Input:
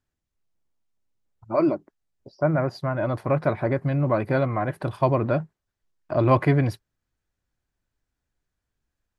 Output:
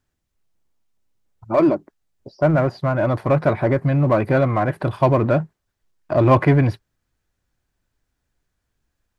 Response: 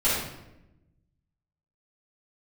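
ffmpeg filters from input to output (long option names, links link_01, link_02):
-filter_complex "[0:a]acrossover=split=3700[link_01][link_02];[link_02]acompressor=threshold=-57dB:ratio=4:attack=1:release=60[link_03];[link_01][link_03]amix=inputs=2:normalize=0,asplit=2[link_04][link_05];[link_05]asoftclip=type=hard:threshold=-22dB,volume=-6dB[link_06];[link_04][link_06]amix=inputs=2:normalize=0,volume=3dB"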